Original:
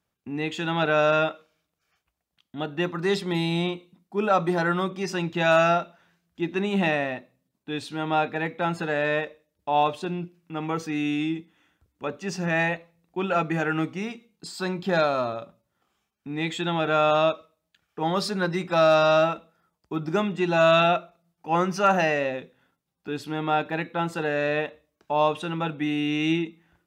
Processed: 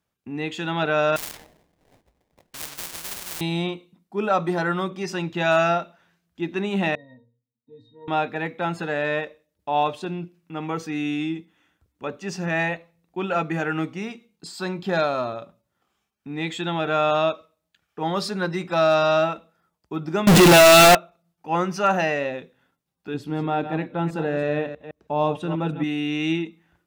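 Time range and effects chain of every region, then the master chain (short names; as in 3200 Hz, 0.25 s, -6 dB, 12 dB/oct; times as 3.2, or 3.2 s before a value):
1.16–3.41 sample-rate reducer 1300 Hz, jitter 20% + spectral compressor 10:1
6.95–8.08 band shelf 1700 Hz -13.5 dB + notches 60/120/180/240/300/360/420/480/540 Hz + octave resonator A#, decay 0.23 s
20.27–20.95 zero-crossing step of -25 dBFS + sample leveller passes 5
23.14–25.84 reverse delay 0.161 s, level -10.5 dB + tilt shelf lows +6 dB, about 640 Hz
whole clip: dry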